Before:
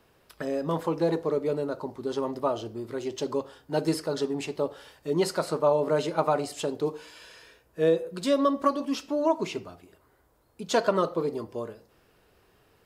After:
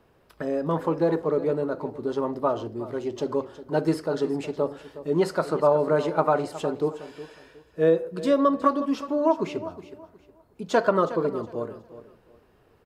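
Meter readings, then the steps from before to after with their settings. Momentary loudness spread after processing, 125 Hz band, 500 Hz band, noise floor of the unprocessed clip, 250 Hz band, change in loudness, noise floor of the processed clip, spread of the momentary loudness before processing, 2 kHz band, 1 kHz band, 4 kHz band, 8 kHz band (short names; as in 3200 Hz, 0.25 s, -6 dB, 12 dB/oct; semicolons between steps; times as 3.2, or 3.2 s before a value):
13 LU, +3.0 dB, +3.0 dB, -64 dBFS, +3.0 dB, +3.0 dB, -61 dBFS, 12 LU, +2.5 dB, +3.0 dB, -4.5 dB, n/a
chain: high shelf 2100 Hz -10.5 dB; on a send: feedback echo 0.365 s, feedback 27%, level -14.5 dB; on the sum: dynamic EQ 1500 Hz, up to +5 dB, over -43 dBFS, Q 1.6; gain +3 dB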